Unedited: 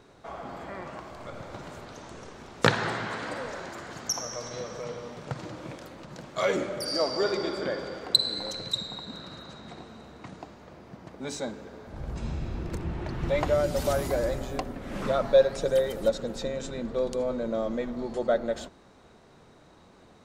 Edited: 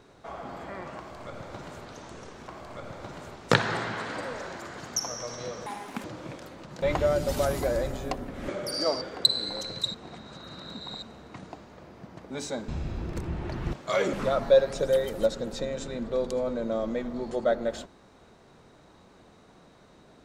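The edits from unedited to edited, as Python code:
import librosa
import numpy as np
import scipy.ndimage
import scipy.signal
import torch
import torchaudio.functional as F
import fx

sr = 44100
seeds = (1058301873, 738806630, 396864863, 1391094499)

y = fx.edit(x, sr, fx.duplicate(start_s=0.98, length_s=0.87, to_s=2.48),
    fx.speed_span(start_s=4.79, length_s=0.65, speed=1.7),
    fx.swap(start_s=6.22, length_s=0.4, other_s=13.3, other_length_s=1.66),
    fx.cut(start_s=7.15, length_s=0.76),
    fx.reverse_span(start_s=8.84, length_s=1.08),
    fx.cut(start_s=11.58, length_s=0.67), tone=tone)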